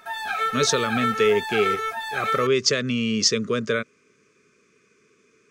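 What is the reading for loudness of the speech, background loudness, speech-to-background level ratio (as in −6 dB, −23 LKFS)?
−23.0 LKFS, −26.5 LKFS, 3.5 dB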